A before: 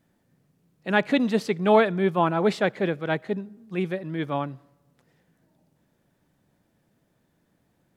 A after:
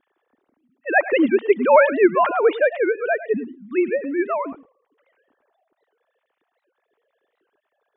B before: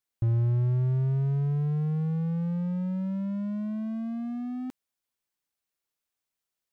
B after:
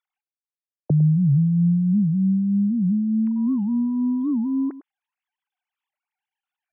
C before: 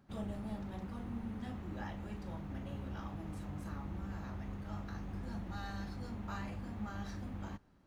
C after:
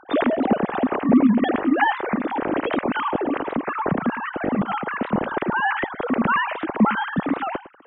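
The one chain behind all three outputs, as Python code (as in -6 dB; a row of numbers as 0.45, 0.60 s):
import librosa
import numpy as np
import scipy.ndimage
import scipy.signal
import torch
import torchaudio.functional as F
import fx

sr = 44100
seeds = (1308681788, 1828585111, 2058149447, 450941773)

y = fx.sine_speech(x, sr)
y = y + 10.0 ** (-15.5 / 20.0) * np.pad(y, (int(105 * sr / 1000.0), 0))[:len(y)]
y = fx.record_warp(y, sr, rpm=78.0, depth_cents=250.0)
y = y * 10.0 ** (-22 / 20.0) / np.sqrt(np.mean(np.square(y)))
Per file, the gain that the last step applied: +5.0, +7.0, +20.5 dB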